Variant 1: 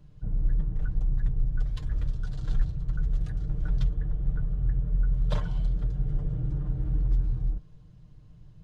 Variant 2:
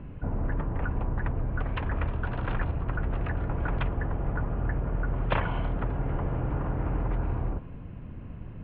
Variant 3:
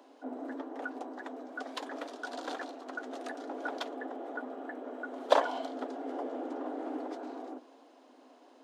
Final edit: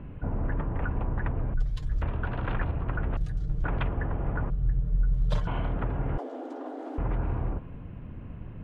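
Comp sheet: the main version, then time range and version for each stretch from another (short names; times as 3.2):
2
1.54–2.02 from 1
3.17–3.64 from 1
4.5–5.47 from 1
6.18–6.98 from 3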